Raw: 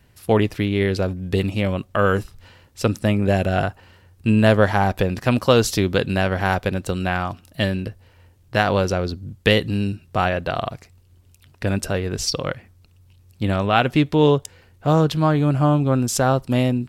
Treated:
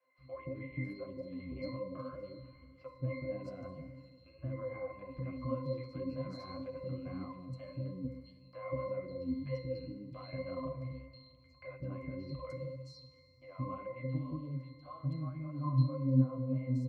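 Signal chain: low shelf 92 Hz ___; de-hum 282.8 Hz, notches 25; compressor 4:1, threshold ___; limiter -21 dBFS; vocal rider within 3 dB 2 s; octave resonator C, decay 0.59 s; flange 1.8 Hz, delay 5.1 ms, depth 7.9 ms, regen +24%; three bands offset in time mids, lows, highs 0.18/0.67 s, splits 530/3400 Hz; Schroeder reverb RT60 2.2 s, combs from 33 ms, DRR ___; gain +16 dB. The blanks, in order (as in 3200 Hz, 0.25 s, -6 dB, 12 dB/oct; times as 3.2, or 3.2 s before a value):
-10.5 dB, -28 dBFS, 14 dB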